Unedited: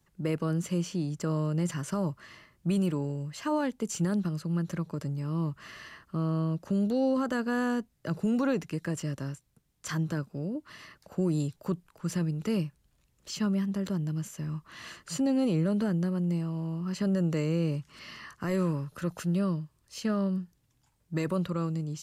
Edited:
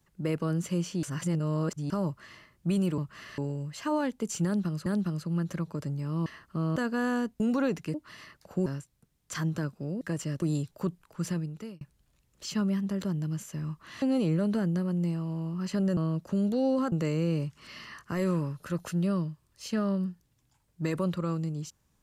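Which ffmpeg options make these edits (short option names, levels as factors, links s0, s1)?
-filter_complex "[0:a]asplit=17[s0][s1][s2][s3][s4][s5][s6][s7][s8][s9][s10][s11][s12][s13][s14][s15][s16];[s0]atrim=end=1.032[s17];[s1]atrim=start=1.028:end=1.902,asetpts=PTS-STARTPTS,areverse[s18];[s2]atrim=start=1.898:end=2.982[s19];[s3]atrim=start=5.448:end=5.852[s20];[s4]atrim=start=2.978:end=4.462[s21];[s5]atrim=start=4.048:end=5.452[s22];[s6]atrim=start=5.848:end=6.352[s23];[s7]atrim=start=7.298:end=7.942[s24];[s8]atrim=start=8.248:end=8.792[s25];[s9]atrim=start=10.548:end=11.272[s26];[s10]atrim=start=9.198:end=10.552[s27];[s11]atrim=start=8.788:end=9.202[s28];[s12]atrim=start=11.268:end=12.66,asetpts=PTS-STARTPTS,afade=t=out:st=0.822:d=0.57[s29];[s13]atrim=start=12.66:end=14.872,asetpts=PTS-STARTPTS,afade=t=in:d=0.004:c=hsin[s30];[s14]atrim=start=15.288:end=17.242[s31];[s15]atrim=start=6.348:end=7.302[s32];[s16]atrim=start=17.238[s33];[s17][s18]acrossfade=d=0.004:c1=hsin:c2=hsin[s34];[s34][s19]acrossfade=d=0.004:c1=hsin:c2=hsin[s35];[s35][s20]acrossfade=d=0.004:c1=hsin:c2=hsin[s36];[s36][s21]acrossfade=d=0.004:c1=hsin:c2=hsin[s37];[s37][s22]acrossfade=d=0.004:c1=hsin:c2=hsin[s38];[s38][s23]acrossfade=d=0.004:c1=hsin:c2=hsin[s39];[s39][s24]acrossfade=d=0.004:c1=hsin:c2=hsin[s40];[s40][s25]acrossfade=d=0.004:c1=hsin:c2=hsin[s41];[s41][s26]acrossfade=d=0.004:c1=hsin:c2=hsin[s42];[s42][s27]acrossfade=d=0.004:c1=hsin:c2=hsin[s43];[s43][s28]acrossfade=d=0.004:c1=hsin:c2=hsin[s44];[s29][s30]concat=n=2:v=0:a=1[s45];[s44][s45]acrossfade=d=0.004:c1=hsin:c2=hsin[s46];[s46][s31]acrossfade=d=0.004:c1=hsin:c2=hsin[s47];[s47][s32]acrossfade=d=0.004:c1=hsin:c2=hsin[s48];[s48][s33]acrossfade=d=0.004:c1=hsin:c2=hsin"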